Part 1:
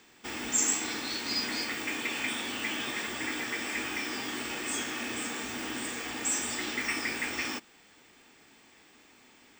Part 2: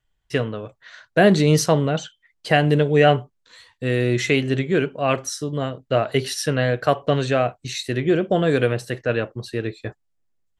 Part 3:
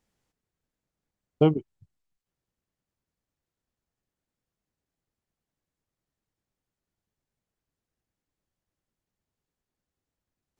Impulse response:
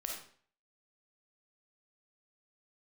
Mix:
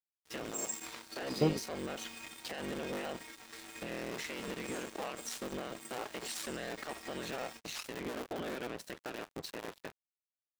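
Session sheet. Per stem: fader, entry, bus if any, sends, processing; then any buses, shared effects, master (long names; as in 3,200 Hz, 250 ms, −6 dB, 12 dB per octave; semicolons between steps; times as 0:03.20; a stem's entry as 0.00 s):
+2.5 dB, 0.00 s, bus A, send −14 dB, stiff-string resonator 68 Hz, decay 0.76 s, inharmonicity 0.03
−0.5 dB, 0.00 s, bus A, no send, sub-harmonics by changed cycles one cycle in 3, inverted; high-pass filter 240 Hz 12 dB per octave; downward compressor 5 to 1, threshold −25 dBFS, peak gain reduction 13.5 dB
−8.5 dB, 0.00 s, no bus, no send, no processing
bus A: 0.0 dB, brickwall limiter −28 dBFS, peak gain reduction 15.5 dB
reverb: on, RT60 0.50 s, pre-delay 10 ms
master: dead-zone distortion −42.5 dBFS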